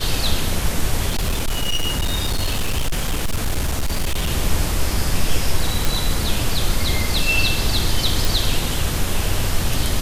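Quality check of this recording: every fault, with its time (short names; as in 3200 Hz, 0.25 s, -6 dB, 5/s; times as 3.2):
1.1–4.3 clipped -16 dBFS
5.85 pop
8.25 pop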